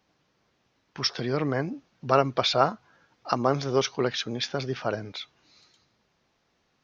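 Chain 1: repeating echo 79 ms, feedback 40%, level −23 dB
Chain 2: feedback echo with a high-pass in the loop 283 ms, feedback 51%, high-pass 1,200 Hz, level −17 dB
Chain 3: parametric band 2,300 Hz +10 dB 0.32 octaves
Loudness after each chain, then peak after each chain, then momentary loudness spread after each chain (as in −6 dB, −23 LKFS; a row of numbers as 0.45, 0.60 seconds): −27.0, −27.0, −26.5 LKFS; −6.0, −6.0, −5.5 dBFS; 15, 16, 15 LU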